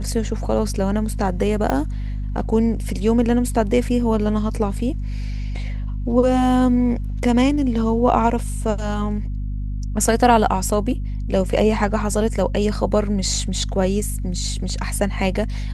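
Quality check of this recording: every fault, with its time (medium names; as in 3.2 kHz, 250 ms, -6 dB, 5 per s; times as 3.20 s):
hum 50 Hz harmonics 5 -25 dBFS
1.70 s: pop -8 dBFS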